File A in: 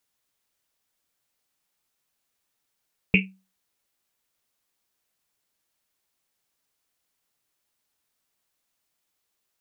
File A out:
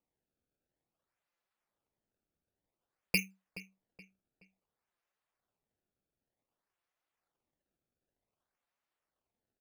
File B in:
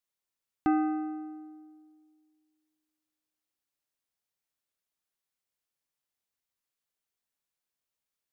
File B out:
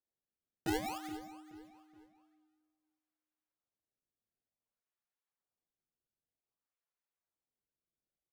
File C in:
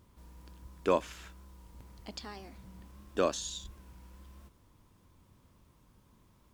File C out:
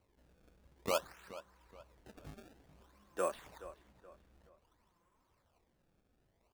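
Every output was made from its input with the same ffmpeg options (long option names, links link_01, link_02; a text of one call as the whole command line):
ffmpeg -i in.wav -filter_complex "[0:a]acrossover=split=430 2700:gain=0.224 1 0.126[link_01][link_02][link_03];[link_01][link_02][link_03]amix=inputs=3:normalize=0,flanger=delay=1.4:depth=4.5:regen=23:speed=1.1:shape=sinusoidal,acrusher=samples=25:mix=1:aa=0.000001:lfo=1:lforange=40:lforate=0.54,asplit=2[link_04][link_05];[link_05]adelay=424,lowpass=frequency=3800:poles=1,volume=-15dB,asplit=2[link_06][link_07];[link_07]adelay=424,lowpass=frequency=3800:poles=1,volume=0.38,asplit=2[link_08][link_09];[link_09]adelay=424,lowpass=frequency=3800:poles=1,volume=0.38[link_10];[link_06][link_08][link_10]amix=inputs=3:normalize=0[link_11];[link_04][link_11]amix=inputs=2:normalize=0" out.wav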